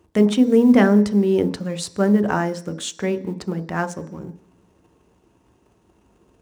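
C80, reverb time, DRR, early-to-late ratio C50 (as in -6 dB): 19.0 dB, 0.50 s, 9.0 dB, 16.5 dB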